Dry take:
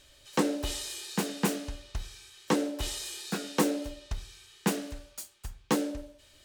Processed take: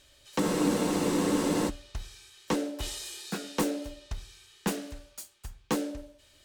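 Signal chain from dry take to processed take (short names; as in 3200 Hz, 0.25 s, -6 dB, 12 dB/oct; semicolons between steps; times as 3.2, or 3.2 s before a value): one-sided clip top -21.5 dBFS; spectral freeze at 0.41, 1.27 s; gain -1.5 dB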